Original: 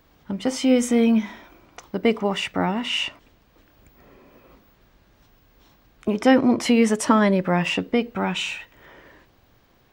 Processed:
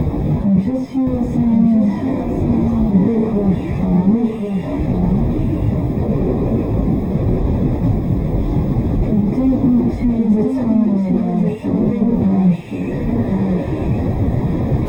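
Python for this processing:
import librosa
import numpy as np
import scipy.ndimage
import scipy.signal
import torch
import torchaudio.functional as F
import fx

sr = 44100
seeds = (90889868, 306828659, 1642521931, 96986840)

p1 = np.sign(x) * np.sqrt(np.mean(np.square(x)))
p2 = np.convolve(p1, np.full(30, 1.0 / 30))[:len(p1)]
p3 = fx.peak_eq(p2, sr, hz=140.0, db=13.5, octaves=2.9)
p4 = fx.stretch_vocoder_free(p3, sr, factor=1.5)
p5 = p4 + fx.echo_single(p4, sr, ms=1067, db=-4.5, dry=0)
y = F.gain(torch.from_numpy(p5), 3.0).numpy()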